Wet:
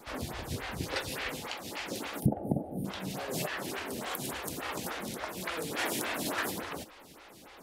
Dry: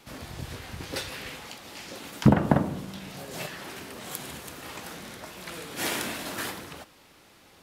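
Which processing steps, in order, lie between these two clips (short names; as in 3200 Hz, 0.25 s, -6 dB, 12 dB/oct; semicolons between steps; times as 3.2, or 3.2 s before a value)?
spectral gain 2.2–2.85, 870–8600 Hz -23 dB; compressor 4:1, threshold -33 dBFS, peak gain reduction 17.5 dB; photocell phaser 3.5 Hz; gain +6.5 dB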